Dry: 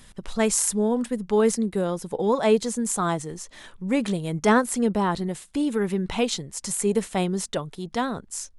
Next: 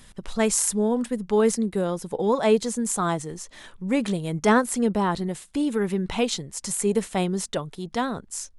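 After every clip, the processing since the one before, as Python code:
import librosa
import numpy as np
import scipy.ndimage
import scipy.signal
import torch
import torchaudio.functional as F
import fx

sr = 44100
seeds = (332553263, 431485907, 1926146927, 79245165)

y = x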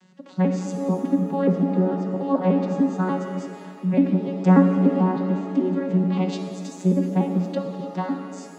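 y = fx.vocoder_arp(x, sr, chord='bare fifth', root=54, every_ms=147)
y = fx.env_lowpass_down(y, sr, base_hz=2100.0, full_db=-18.5)
y = fx.rev_shimmer(y, sr, seeds[0], rt60_s=2.0, semitones=7, shimmer_db=-8, drr_db=4.5)
y = F.gain(torch.from_numpy(y), 3.0).numpy()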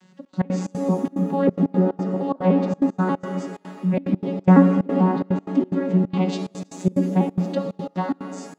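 y = fx.step_gate(x, sr, bpm=181, pattern='xxx.x.xx.xxxx.x', floor_db=-24.0, edge_ms=4.5)
y = F.gain(torch.from_numpy(y), 2.0).numpy()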